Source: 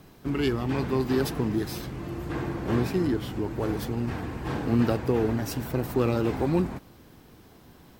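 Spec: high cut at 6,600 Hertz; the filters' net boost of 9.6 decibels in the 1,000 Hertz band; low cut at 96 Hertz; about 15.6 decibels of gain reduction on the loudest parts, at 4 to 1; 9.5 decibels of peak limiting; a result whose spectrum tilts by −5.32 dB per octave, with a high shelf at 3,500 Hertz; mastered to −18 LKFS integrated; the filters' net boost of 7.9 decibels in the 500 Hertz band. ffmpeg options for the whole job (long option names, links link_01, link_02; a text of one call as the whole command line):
ffmpeg -i in.wav -af "highpass=96,lowpass=6600,equalizer=frequency=500:width_type=o:gain=8.5,equalizer=frequency=1000:width_type=o:gain=8.5,highshelf=frequency=3500:gain=8.5,acompressor=threshold=-33dB:ratio=4,volume=19.5dB,alimiter=limit=-8dB:level=0:latency=1" out.wav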